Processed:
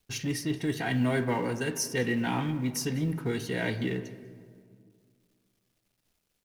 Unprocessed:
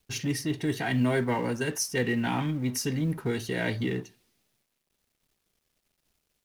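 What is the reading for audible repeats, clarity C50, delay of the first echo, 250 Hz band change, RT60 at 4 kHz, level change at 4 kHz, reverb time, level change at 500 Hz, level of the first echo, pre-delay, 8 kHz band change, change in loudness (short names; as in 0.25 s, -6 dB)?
1, 12.5 dB, 0.196 s, -1.0 dB, 0.95 s, -1.5 dB, 2.0 s, -1.5 dB, -22.0 dB, 4 ms, -1.5 dB, -1.0 dB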